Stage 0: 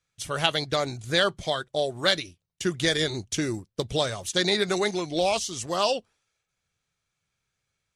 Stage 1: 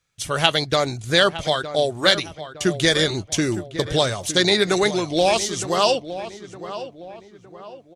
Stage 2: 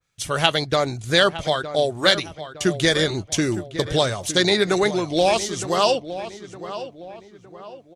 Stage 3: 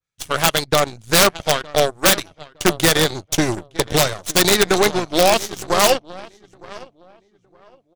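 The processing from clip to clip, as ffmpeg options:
-filter_complex "[0:a]asplit=2[a][b];[b]adelay=912,lowpass=f=2.1k:p=1,volume=-12dB,asplit=2[c][d];[d]adelay=912,lowpass=f=2.1k:p=1,volume=0.43,asplit=2[e][f];[f]adelay=912,lowpass=f=2.1k:p=1,volume=0.43,asplit=2[g][h];[h]adelay=912,lowpass=f=2.1k:p=1,volume=0.43[i];[a][c][e][g][i]amix=inputs=5:normalize=0,volume=6dB"
-af "adynamicequalizer=threshold=0.0251:dfrequency=2200:dqfactor=0.7:tfrequency=2200:tqfactor=0.7:attack=5:release=100:ratio=0.375:range=3:mode=cutabove:tftype=highshelf"
-af "aeval=exprs='(mod(2.82*val(0)+1,2)-1)/2.82':c=same,aeval=exprs='0.355*(cos(1*acos(clip(val(0)/0.355,-1,1)))-cos(1*PI/2))+0.00794*(cos(3*acos(clip(val(0)/0.355,-1,1)))-cos(3*PI/2))+0.0355*(cos(6*acos(clip(val(0)/0.355,-1,1)))-cos(6*PI/2))+0.0398*(cos(7*acos(clip(val(0)/0.355,-1,1)))-cos(7*PI/2))+0.00282*(cos(8*acos(clip(val(0)/0.355,-1,1)))-cos(8*PI/2))':c=same,volume=4dB"

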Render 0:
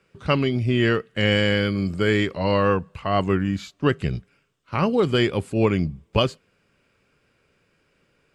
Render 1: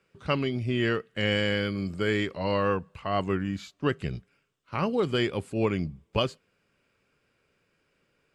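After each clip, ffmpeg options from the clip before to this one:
-af "lowshelf=f=190:g=-3,volume=-5.5dB"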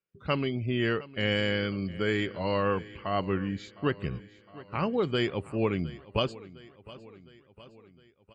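-af "afftdn=nr=22:nf=-51,aecho=1:1:710|1420|2130|2840|3550:0.112|0.064|0.0365|0.0208|0.0118,volume=-1.5dB"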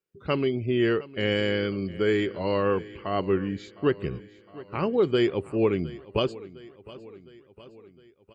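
-af "equalizer=f=380:w=1.9:g=8"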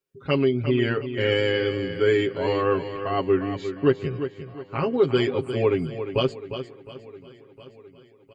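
-filter_complex "[0:a]aecho=1:1:7.4:0.82,asplit=2[a][b];[b]aecho=0:1:353:0.316[c];[a][c]amix=inputs=2:normalize=0"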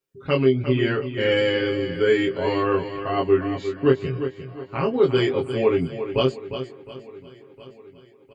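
-filter_complex "[0:a]asplit=2[a][b];[b]adelay=23,volume=-3dB[c];[a][c]amix=inputs=2:normalize=0"

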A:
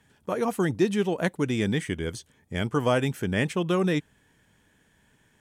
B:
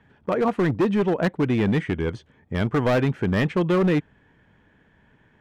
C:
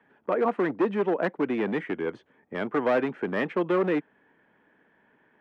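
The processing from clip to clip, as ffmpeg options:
-af "lowpass=2.1k,asoftclip=type=hard:threshold=-22dB,volume=6dB"
-filter_complex "[0:a]acrossover=split=220 2700:gain=0.0631 1 0.178[a][b][c];[a][b][c]amix=inputs=3:normalize=0,acrossover=split=150|880[d][e][f];[d]acompressor=threshold=-50dB:ratio=6[g];[g][e][f]amix=inputs=3:normalize=0,volume=-1.5dB"

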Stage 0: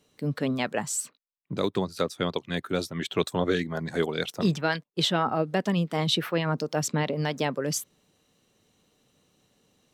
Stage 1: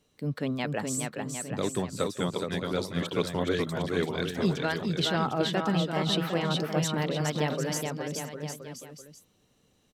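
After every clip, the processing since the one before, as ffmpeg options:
-filter_complex "[0:a]lowshelf=f=69:g=10.5,asplit=2[a][b];[b]aecho=0:1:420|756|1025|1240|1412:0.631|0.398|0.251|0.158|0.1[c];[a][c]amix=inputs=2:normalize=0,volume=-4dB"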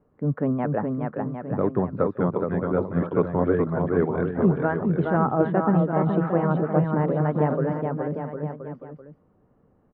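-af "lowpass=f=1.4k:w=0.5412,lowpass=f=1.4k:w=1.3066,aemphasis=mode=reproduction:type=50fm,volume=6.5dB"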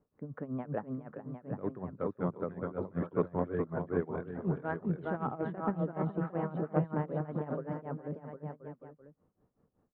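-af "aeval=exprs='0.447*(cos(1*acos(clip(val(0)/0.447,-1,1)))-cos(1*PI/2))+0.0316*(cos(3*acos(clip(val(0)/0.447,-1,1)))-cos(3*PI/2))':c=same,tremolo=f=5.3:d=0.87,volume=-6.5dB"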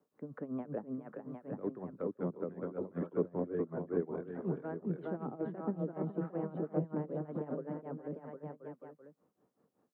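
-filter_complex "[0:a]highpass=220,acrossover=split=280|510[a][b][c];[c]acompressor=threshold=-52dB:ratio=4[d];[a][b][d]amix=inputs=3:normalize=0,volume=1dB"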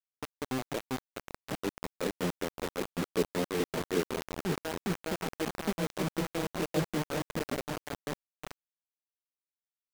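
-af "acrusher=bits=5:mix=0:aa=0.000001,volume=3dB"

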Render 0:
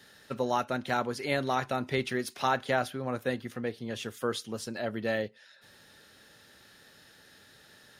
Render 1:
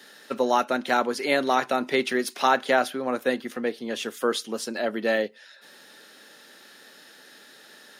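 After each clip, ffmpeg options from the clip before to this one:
-af "highpass=f=220:w=0.5412,highpass=f=220:w=1.3066,volume=7dB"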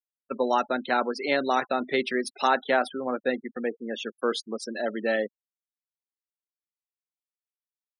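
-af "afftfilt=real='re*gte(hypot(re,im),0.0316)':imag='im*gte(hypot(re,im),0.0316)':win_size=1024:overlap=0.75,volume=-2dB"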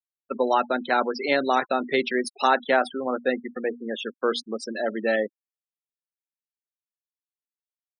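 -af "bandreject=f=60:t=h:w=6,bandreject=f=120:t=h:w=6,bandreject=f=180:t=h:w=6,bandreject=f=240:t=h:w=6,bandreject=f=300:t=h:w=6,afftfilt=real='re*gte(hypot(re,im),0.0224)':imag='im*gte(hypot(re,im),0.0224)':win_size=1024:overlap=0.75,volume=2.5dB"

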